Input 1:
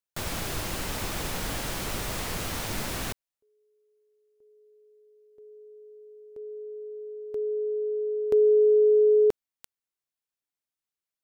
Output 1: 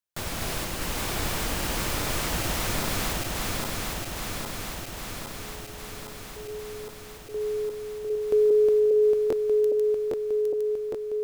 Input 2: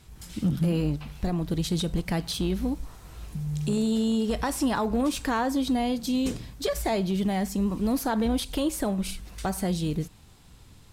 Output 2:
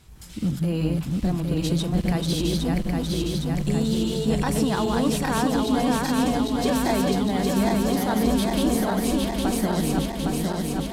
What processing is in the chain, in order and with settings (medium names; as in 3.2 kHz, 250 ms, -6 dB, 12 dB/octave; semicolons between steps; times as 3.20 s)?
backward echo that repeats 405 ms, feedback 83%, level -2 dB